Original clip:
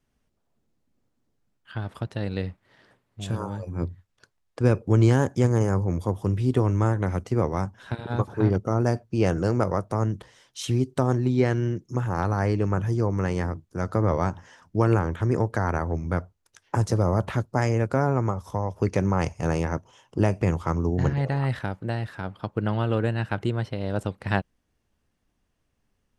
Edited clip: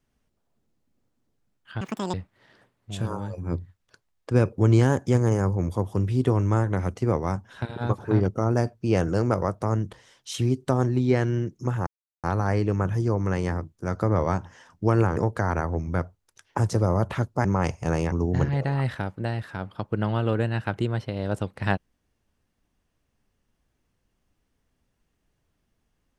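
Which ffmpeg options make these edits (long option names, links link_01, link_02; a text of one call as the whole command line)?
ffmpeg -i in.wav -filter_complex "[0:a]asplit=7[link_01][link_02][link_03][link_04][link_05][link_06][link_07];[link_01]atrim=end=1.814[link_08];[link_02]atrim=start=1.81:end=2.43,asetpts=PTS-STARTPTS,asetrate=83790,aresample=44100[link_09];[link_03]atrim=start=2.426:end=12.16,asetpts=PTS-STARTPTS,afade=type=out:start_time=9.73:duration=0.004:curve=hsin,apad=pad_dur=0.37[link_10];[link_04]atrim=start=12.16:end=15.092,asetpts=PTS-STARTPTS,afade=type=in:duration=0.004:curve=hsin[link_11];[link_05]atrim=start=15.338:end=17.622[link_12];[link_06]atrim=start=19.018:end=19.692[link_13];[link_07]atrim=start=20.758[link_14];[link_08][link_09]acrossfade=duration=0.004:curve1=hsin:curve2=hsin[link_15];[link_10][link_11]concat=n=2:v=0:a=1[link_16];[link_15][link_16]acrossfade=duration=0.004:curve1=hsin:curve2=hsin[link_17];[link_17][link_12]acrossfade=duration=0.004:curve1=hsin:curve2=hsin[link_18];[link_18][link_13]acrossfade=duration=0.004:curve1=hsin:curve2=hsin[link_19];[link_19][link_14]acrossfade=duration=0.004:curve1=hsin:curve2=hsin" out.wav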